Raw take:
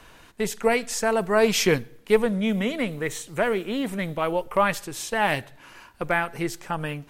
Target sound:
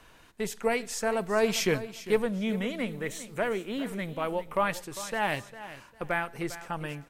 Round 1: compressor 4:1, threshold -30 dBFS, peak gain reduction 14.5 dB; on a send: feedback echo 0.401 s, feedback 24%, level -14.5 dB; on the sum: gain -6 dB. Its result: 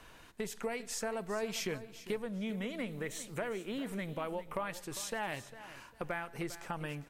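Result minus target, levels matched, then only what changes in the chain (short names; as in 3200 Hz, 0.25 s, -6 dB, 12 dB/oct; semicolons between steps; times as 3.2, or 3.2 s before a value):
compressor: peak gain reduction +14.5 dB
remove: compressor 4:1, threshold -30 dBFS, peak gain reduction 14.5 dB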